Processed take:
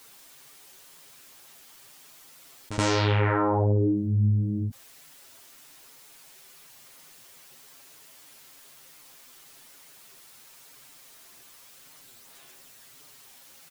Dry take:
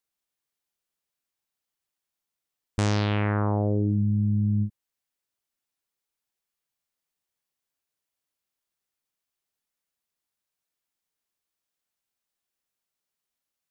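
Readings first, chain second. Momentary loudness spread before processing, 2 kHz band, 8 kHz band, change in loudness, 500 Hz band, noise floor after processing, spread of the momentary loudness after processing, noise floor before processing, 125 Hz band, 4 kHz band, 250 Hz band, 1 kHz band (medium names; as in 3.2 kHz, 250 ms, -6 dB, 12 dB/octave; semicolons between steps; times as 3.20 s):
4 LU, +4.0 dB, no reading, +0.5 dB, +4.0 dB, -52 dBFS, 8 LU, under -85 dBFS, 0.0 dB, +4.5 dB, -1.0 dB, +4.5 dB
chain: chorus voices 4, 0.91 Hz, delay 10 ms, depth 3.5 ms; comb 7.5 ms, depth 50%; in parallel at -2 dB: peak limiter -23 dBFS, peak gain reduction 9 dB; on the sum: bass shelf 76 Hz -10.5 dB; pre-echo 75 ms -20 dB; level flattener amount 50%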